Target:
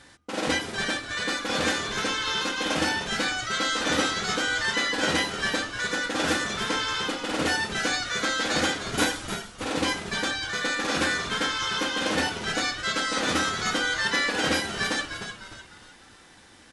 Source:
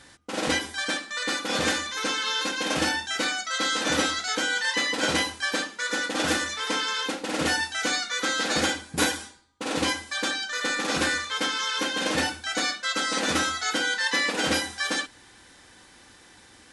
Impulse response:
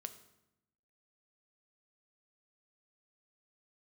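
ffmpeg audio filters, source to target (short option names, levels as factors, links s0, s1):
-filter_complex "[0:a]highshelf=f=5900:g=-4.5,asplit=2[s0][s1];[s1]asplit=4[s2][s3][s4][s5];[s2]adelay=303,afreqshift=-100,volume=0.376[s6];[s3]adelay=606,afreqshift=-200,volume=0.15[s7];[s4]adelay=909,afreqshift=-300,volume=0.0603[s8];[s5]adelay=1212,afreqshift=-400,volume=0.024[s9];[s6][s7][s8][s9]amix=inputs=4:normalize=0[s10];[s0][s10]amix=inputs=2:normalize=0"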